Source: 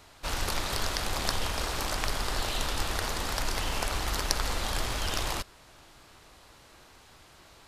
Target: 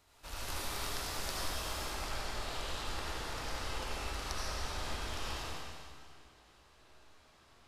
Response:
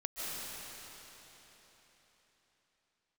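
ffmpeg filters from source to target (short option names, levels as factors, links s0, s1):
-filter_complex "[0:a]asetnsamples=n=441:p=0,asendcmd='1.77 highshelf g -8.5',highshelf=f=9200:g=6[s0];[1:a]atrim=start_sample=2205,asetrate=88200,aresample=44100[s1];[s0][s1]afir=irnorm=-1:irlink=0,volume=0.531"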